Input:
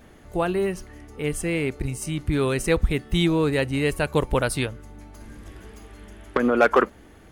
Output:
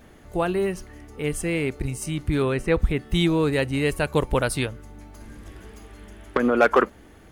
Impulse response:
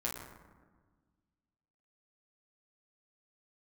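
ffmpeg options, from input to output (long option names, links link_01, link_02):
-filter_complex "[0:a]acrusher=bits=11:mix=0:aa=0.000001,asettb=1/sr,asplit=3[link_01][link_02][link_03];[link_01]atrim=end=2.424[link_04];[link_02]atrim=start=2.42:end=3.05,asetpts=PTS-STARTPTS,afade=type=in:duration=0.004:curve=qsin,afade=type=out:start_time=0.626:duration=0.004:curve=qsin,acrossover=split=3000[link_05][link_06];[link_06]acompressor=threshold=-46dB:ratio=4:attack=1:release=60[link_07];[link_05][link_07]amix=inputs=2:normalize=0[link_08];[link_03]atrim=start=3.046[link_09];[link_04][link_08]acrossfade=duration=0.004:curve1=hsin:curve2=qsin[link_10];[link_10][link_09]acrossfade=duration=0.004:curve1=qsin:curve2=hsin"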